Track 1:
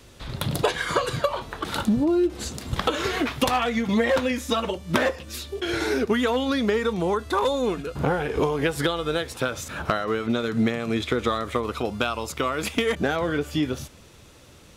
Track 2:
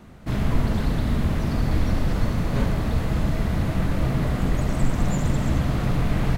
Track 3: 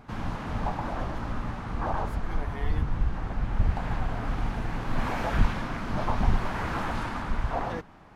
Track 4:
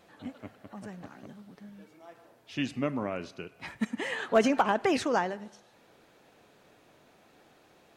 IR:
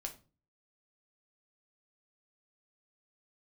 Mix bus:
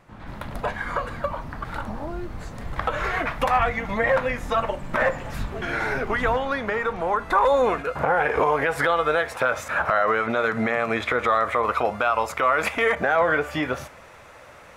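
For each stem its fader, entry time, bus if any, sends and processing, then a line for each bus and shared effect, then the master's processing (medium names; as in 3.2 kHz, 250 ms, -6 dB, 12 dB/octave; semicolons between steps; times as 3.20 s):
2.41 s -19 dB -> 3.11 s -12.5 dB -> 7.12 s -12.5 dB -> 7.34 s -6 dB, 0.00 s, send -8 dB, high-order bell 1.1 kHz +15 dB 2.5 oct
-16.0 dB, 0.00 s, no send, none
-5.0 dB, 0.00 s, no send, Bessel low-pass 2.9 kHz; chorus 0.36 Hz, delay 19.5 ms, depth 3.7 ms
-15.0 dB, 1.20 s, no send, none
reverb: on, RT60 0.35 s, pre-delay 5 ms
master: peak limiter -10.5 dBFS, peak gain reduction 10.5 dB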